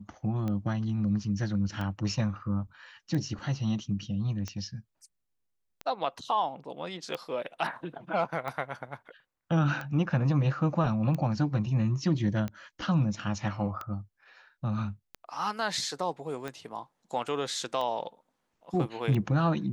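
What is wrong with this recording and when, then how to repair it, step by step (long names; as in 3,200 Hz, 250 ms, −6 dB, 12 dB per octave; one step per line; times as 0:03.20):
scratch tick 45 rpm −22 dBFS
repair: click removal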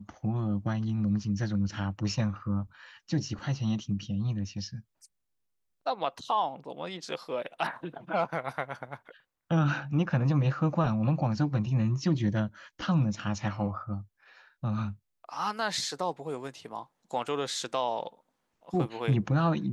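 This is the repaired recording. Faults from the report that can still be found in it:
none of them is left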